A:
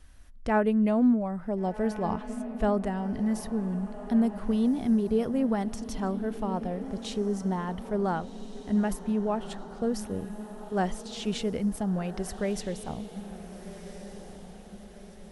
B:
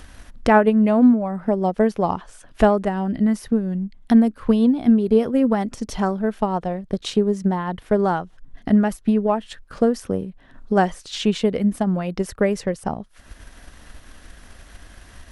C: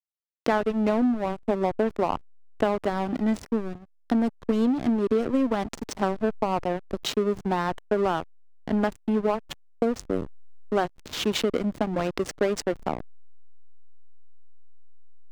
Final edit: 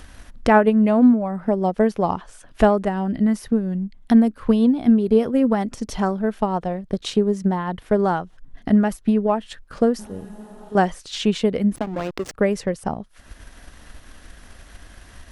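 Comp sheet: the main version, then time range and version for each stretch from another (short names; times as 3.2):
B
9.99–10.75 from A
11.76–12.34 from C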